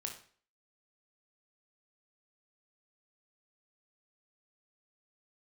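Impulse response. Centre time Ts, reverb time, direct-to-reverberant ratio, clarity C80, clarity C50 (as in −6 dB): 20 ms, 0.45 s, 2.0 dB, 12.5 dB, 7.5 dB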